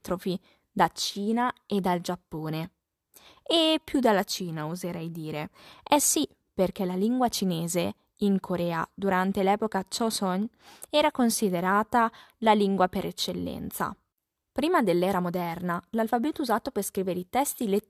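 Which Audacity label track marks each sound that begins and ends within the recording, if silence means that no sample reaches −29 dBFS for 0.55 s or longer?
3.500000	13.900000	sound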